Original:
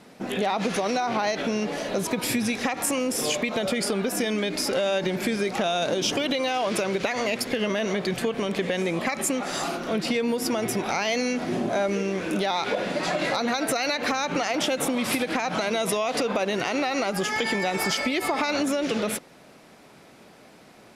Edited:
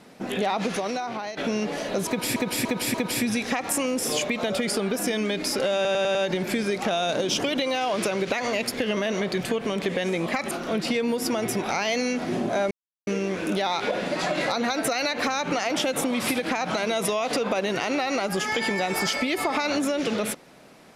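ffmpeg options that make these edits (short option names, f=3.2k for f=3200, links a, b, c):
-filter_complex "[0:a]asplit=11[a][b][c][d][e][f][g][h][i][j][k];[a]atrim=end=1.37,asetpts=PTS-STARTPTS,afade=t=out:st=0.55:d=0.82:silence=0.298538[l];[b]atrim=start=1.37:end=2.362,asetpts=PTS-STARTPTS,afade=t=in:d=0.004:c=hsin:silence=0.298538[m];[c]atrim=start=2.068:end=2.362[n];[d]atrim=start=2.068:end=2.362[o];[e]atrim=start=2.068:end=4.982[p];[f]atrim=start=4.878:end=4.982[q];[g]atrim=start=4.878:end=4.982[r];[h]atrim=start=4.878:end=4.982[s];[i]atrim=start=4.878:end=9.242[t];[j]atrim=start=9.708:end=11.91,asetpts=PTS-STARTPTS,afade=t=out:st=2.198:d=0.004:c=hsin,apad=pad_dur=0.36[u];[k]atrim=start=11.91,asetpts=PTS-STARTPTS,afade=t=in:d=0.004:c=hsin[v];[l][m]concat=n=2:v=0:a=1[w];[w][n]acrossfade=d=0.004:c1=hsin:c2=hsin[x];[x][o]acrossfade=d=0.004:c1=hsin:c2=hsin[y];[y][p]acrossfade=d=0.004:c1=hsin:c2=hsin[z];[z][q]acrossfade=d=0.004:c1=hsin:c2=hsin[aa];[aa][r]acrossfade=d=0.004:c1=hsin:c2=hsin[ab];[ab][s]acrossfade=d=0.004:c1=hsin:c2=hsin[ac];[ac][t]acrossfade=d=0.004:c1=hsin:c2=hsin[ad];[u][v]concat=n=2:v=0:a=1[ae];[ad][ae]acrossfade=d=0.004:c1=hsin:c2=hsin"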